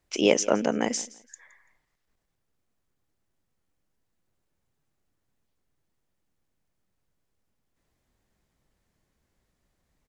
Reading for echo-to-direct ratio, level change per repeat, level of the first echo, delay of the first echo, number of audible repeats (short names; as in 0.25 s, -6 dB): -20.0 dB, -12.0 dB, -20.5 dB, 0.168 s, 2